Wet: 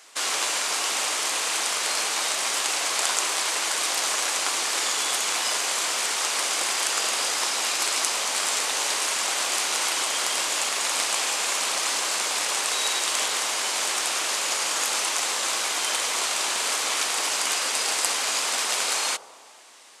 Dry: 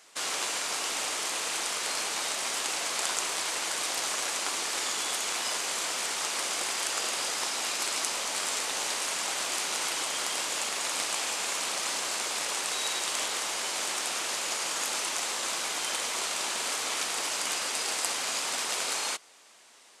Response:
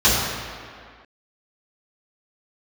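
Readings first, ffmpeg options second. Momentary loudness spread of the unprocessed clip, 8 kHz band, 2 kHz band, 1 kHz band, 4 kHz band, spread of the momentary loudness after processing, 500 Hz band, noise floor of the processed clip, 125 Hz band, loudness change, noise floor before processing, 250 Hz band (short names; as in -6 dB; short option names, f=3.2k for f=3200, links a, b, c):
1 LU, +6.0 dB, +6.0 dB, +6.0 dB, +6.0 dB, 1 LU, +4.5 dB, -35 dBFS, n/a, +6.0 dB, -42 dBFS, +2.5 dB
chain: -filter_complex "[0:a]highpass=f=370:p=1,asplit=2[a][b];[1:a]atrim=start_sample=2205,lowpass=f=1.1k:w=0.5412,lowpass=f=1.1k:w=1.3066[c];[b][c]afir=irnorm=-1:irlink=0,volume=-33dB[d];[a][d]amix=inputs=2:normalize=0,volume=6dB"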